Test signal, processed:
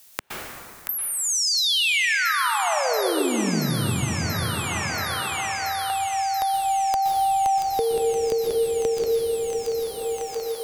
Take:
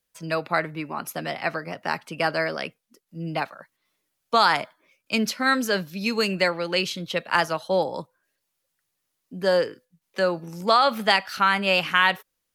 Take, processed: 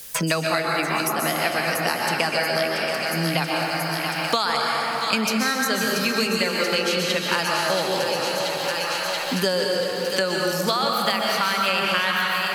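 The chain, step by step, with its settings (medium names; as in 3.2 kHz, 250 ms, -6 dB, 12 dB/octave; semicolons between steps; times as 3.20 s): treble shelf 3.4 kHz +11.5 dB; compression 2:1, threshold -24 dBFS; thinning echo 681 ms, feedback 69%, high-pass 920 Hz, level -10 dB; plate-style reverb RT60 2.2 s, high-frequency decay 0.5×, pre-delay 110 ms, DRR -1 dB; three bands compressed up and down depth 100%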